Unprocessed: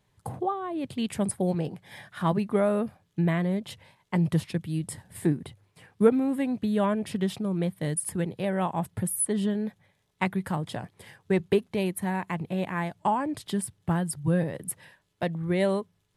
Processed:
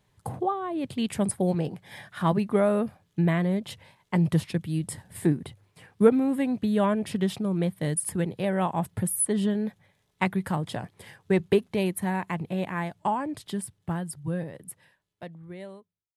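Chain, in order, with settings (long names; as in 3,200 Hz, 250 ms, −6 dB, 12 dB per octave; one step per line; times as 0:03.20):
fade-out on the ending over 4.25 s
level +1.5 dB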